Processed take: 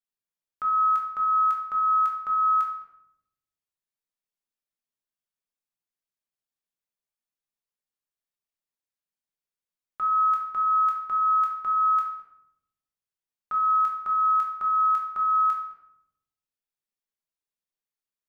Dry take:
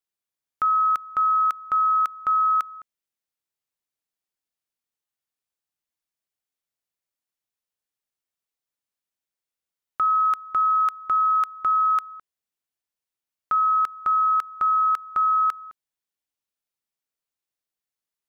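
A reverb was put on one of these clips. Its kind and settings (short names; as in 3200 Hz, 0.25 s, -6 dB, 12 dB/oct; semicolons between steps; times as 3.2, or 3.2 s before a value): shoebox room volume 220 m³, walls mixed, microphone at 1.3 m; gain -9.5 dB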